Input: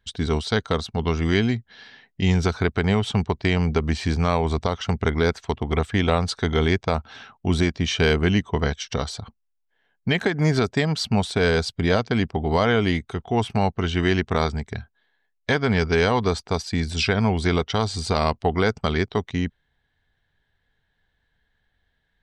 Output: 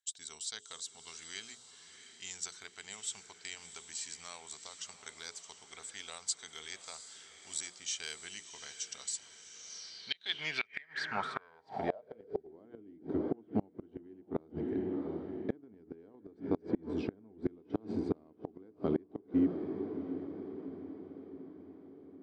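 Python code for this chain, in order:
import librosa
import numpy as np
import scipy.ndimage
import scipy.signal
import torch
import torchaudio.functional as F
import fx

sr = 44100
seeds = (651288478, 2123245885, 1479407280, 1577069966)

y = fx.hum_notches(x, sr, base_hz=60, count=8)
y = fx.echo_diffused(y, sr, ms=698, feedback_pct=55, wet_db=-11)
y = fx.filter_sweep_bandpass(y, sr, from_hz=7600.0, to_hz=310.0, start_s=9.5, end_s=12.66, q=6.7)
y = fx.gate_flip(y, sr, shuts_db=-27.0, range_db=-30)
y = F.gain(torch.from_numpy(y), 8.0).numpy()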